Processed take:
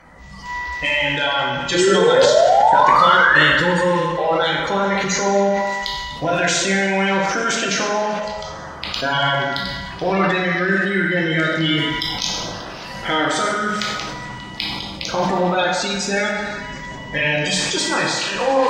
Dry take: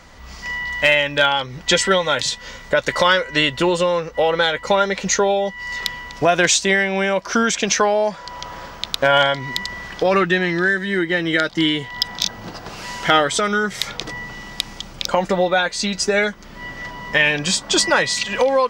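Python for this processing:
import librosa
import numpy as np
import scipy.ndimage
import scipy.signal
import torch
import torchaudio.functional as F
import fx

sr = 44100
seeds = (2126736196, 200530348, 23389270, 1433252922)

p1 = fx.spec_quant(x, sr, step_db=30)
p2 = fx.high_shelf(p1, sr, hz=8800.0, db=-8.5)
p3 = fx.over_compress(p2, sr, threshold_db=-20.0, ratio=-1.0)
p4 = p2 + (p3 * librosa.db_to_amplitude(-1.0))
p5 = fx.spec_paint(p4, sr, seeds[0], shape='rise', start_s=1.74, length_s=1.68, low_hz=340.0, high_hz=1900.0, level_db=-9.0)
p6 = p5 + fx.echo_stepped(p5, sr, ms=146, hz=780.0, octaves=0.7, feedback_pct=70, wet_db=-9.0, dry=0)
p7 = fx.rev_plate(p6, sr, seeds[1], rt60_s=1.3, hf_ratio=0.75, predelay_ms=0, drr_db=-2.0)
p8 = fx.sustainer(p7, sr, db_per_s=26.0)
y = p8 * librosa.db_to_amplitude(-9.5)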